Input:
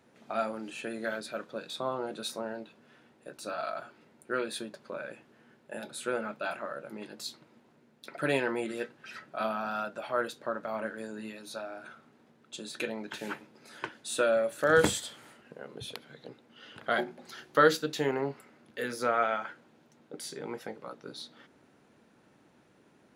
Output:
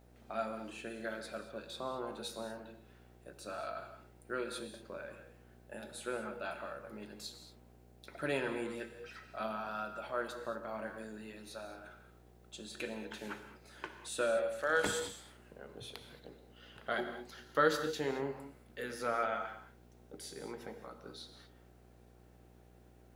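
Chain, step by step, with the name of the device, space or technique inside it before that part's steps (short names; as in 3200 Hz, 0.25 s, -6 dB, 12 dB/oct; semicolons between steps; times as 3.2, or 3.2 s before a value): 14.37–14.86 weighting filter A; video cassette with head-switching buzz (buzz 60 Hz, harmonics 13, -56 dBFS -4 dB/oct; white noise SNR 38 dB); non-linear reverb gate 0.25 s flat, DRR 7 dB; gain -7 dB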